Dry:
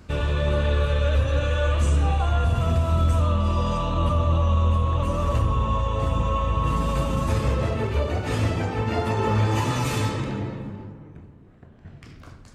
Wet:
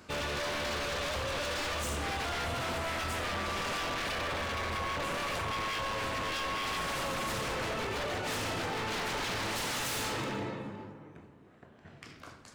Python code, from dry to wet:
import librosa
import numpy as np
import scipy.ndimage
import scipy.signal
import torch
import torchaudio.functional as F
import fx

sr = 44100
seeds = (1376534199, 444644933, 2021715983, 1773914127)

y = fx.highpass(x, sr, hz=510.0, slope=6)
y = 10.0 ** (-30.5 / 20.0) * (np.abs((y / 10.0 ** (-30.5 / 20.0) + 3.0) % 4.0 - 2.0) - 1.0)
y = y * librosa.db_to_amplitude(1.0)